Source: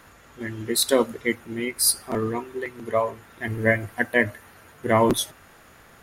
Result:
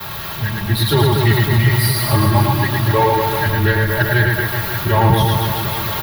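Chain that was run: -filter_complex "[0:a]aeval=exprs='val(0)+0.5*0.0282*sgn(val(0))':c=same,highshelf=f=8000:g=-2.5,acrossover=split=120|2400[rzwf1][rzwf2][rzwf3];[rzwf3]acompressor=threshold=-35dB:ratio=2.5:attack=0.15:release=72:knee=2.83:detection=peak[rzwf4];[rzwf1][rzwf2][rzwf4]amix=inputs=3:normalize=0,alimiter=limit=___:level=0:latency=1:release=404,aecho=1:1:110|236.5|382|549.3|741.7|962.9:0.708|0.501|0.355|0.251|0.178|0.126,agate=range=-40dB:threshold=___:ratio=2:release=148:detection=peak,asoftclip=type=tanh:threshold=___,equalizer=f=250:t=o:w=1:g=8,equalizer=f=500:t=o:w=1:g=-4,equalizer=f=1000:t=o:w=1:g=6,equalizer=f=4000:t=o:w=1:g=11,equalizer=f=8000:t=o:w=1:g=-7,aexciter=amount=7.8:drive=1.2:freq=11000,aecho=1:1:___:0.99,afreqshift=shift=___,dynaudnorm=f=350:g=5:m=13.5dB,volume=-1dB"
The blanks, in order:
-9.5dB, -39dB, -14dB, 4, -120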